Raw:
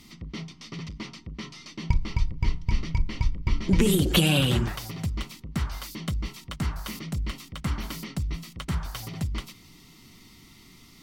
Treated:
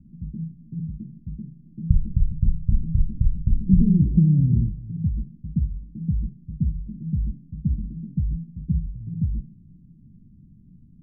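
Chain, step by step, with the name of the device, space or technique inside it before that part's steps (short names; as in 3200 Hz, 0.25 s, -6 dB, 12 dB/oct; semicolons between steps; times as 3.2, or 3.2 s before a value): the neighbour's flat through the wall (LPF 210 Hz 24 dB/oct; bell 170 Hz +4 dB); gain +4.5 dB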